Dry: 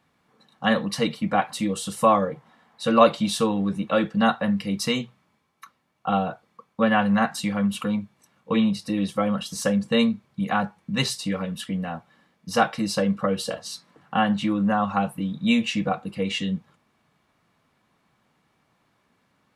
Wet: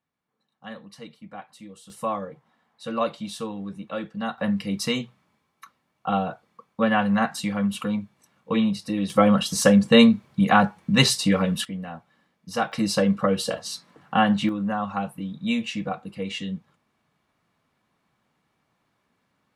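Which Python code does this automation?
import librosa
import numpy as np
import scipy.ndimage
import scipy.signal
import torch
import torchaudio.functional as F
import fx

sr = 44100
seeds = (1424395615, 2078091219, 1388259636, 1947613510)

y = fx.gain(x, sr, db=fx.steps((0.0, -18.0), (1.9, -9.5), (4.38, -1.0), (9.1, 6.5), (11.65, -5.0), (12.72, 2.0), (14.49, -4.5)))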